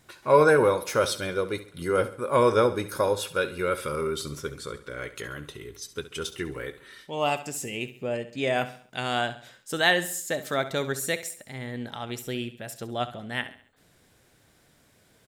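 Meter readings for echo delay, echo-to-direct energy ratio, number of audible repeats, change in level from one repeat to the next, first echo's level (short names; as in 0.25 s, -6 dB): 68 ms, -13.0 dB, 3, -7.5 dB, -14.0 dB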